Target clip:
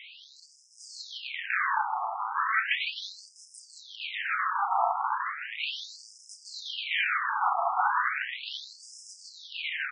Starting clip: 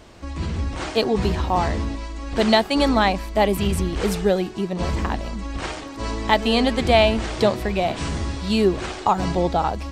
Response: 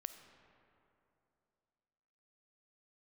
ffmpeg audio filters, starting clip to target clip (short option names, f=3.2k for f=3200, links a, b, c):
-filter_complex "[0:a]bass=f=250:g=10,treble=f=4k:g=-4,alimiter=limit=-12dB:level=0:latency=1:release=367,volume=27.5dB,asoftclip=hard,volume=-27.5dB,asplit=2[a][b];[b]adelay=32,volume=-8.5dB[c];[a][c]amix=inputs=2:normalize=0,aecho=1:1:158:0.596,asplit=2[d][e];[1:a]atrim=start_sample=2205,lowpass=3.1k[f];[e][f]afir=irnorm=-1:irlink=0,volume=11.5dB[g];[d][g]amix=inputs=2:normalize=0,afftfilt=real='re*between(b*sr/1024,960*pow(7100/960,0.5+0.5*sin(2*PI*0.36*pts/sr))/1.41,960*pow(7100/960,0.5+0.5*sin(2*PI*0.36*pts/sr))*1.41)':imag='im*between(b*sr/1024,960*pow(7100/960,0.5+0.5*sin(2*PI*0.36*pts/sr))/1.41,960*pow(7100/960,0.5+0.5*sin(2*PI*0.36*pts/sr))*1.41)':win_size=1024:overlap=0.75,volume=5dB"